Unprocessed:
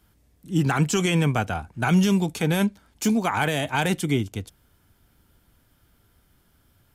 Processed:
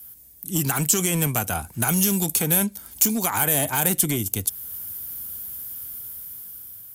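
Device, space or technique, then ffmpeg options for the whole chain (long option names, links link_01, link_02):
FM broadcast chain: -filter_complex "[0:a]highpass=50,dynaudnorm=framelen=660:gausssize=5:maxgain=11dB,acrossover=split=1800|6500[link_01][link_02][link_03];[link_01]acompressor=threshold=-17dB:ratio=4[link_04];[link_02]acompressor=threshold=-36dB:ratio=4[link_05];[link_03]acompressor=threshold=-39dB:ratio=4[link_06];[link_04][link_05][link_06]amix=inputs=3:normalize=0,aemphasis=mode=production:type=50fm,alimiter=limit=-14dB:level=0:latency=1:release=418,asoftclip=type=hard:threshold=-18dB,lowpass=frequency=15000:width=0.5412,lowpass=frequency=15000:width=1.3066,aemphasis=mode=production:type=50fm"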